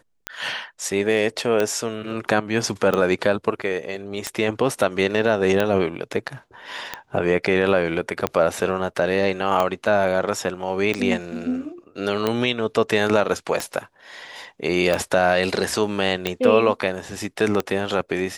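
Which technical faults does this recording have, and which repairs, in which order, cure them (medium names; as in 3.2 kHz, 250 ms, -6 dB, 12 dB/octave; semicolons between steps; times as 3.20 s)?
tick 45 rpm -8 dBFS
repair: de-click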